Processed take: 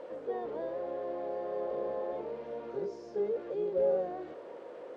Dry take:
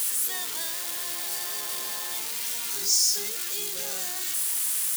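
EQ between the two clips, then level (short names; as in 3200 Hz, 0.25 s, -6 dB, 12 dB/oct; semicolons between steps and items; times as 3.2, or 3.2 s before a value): synth low-pass 530 Hz, resonance Q 5.8; air absorption 97 m; low shelf 180 Hz -3 dB; +4.5 dB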